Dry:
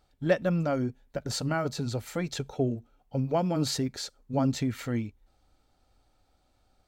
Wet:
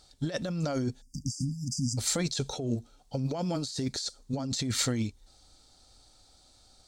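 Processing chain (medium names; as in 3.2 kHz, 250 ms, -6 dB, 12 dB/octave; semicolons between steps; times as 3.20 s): high-order bell 5.9 kHz +14.5 dB; compressor with a negative ratio -31 dBFS, ratio -1; spectral selection erased 1.02–1.98 s, 300–4700 Hz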